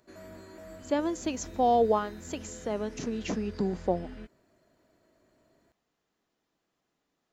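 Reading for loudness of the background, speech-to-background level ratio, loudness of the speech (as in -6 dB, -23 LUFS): -46.5 LUFS, 16.5 dB, -30.0 LUFS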